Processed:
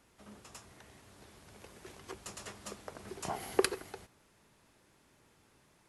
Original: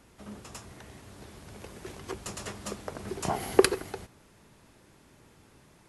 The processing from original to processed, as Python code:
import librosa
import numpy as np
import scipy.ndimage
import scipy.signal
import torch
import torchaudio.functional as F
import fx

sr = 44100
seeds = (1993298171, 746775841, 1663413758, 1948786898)

y = fx.low_shelf(x, sr, hz=430.0, db=-5.5)
y = y * 10.0 ** (-6.0 / 20.0)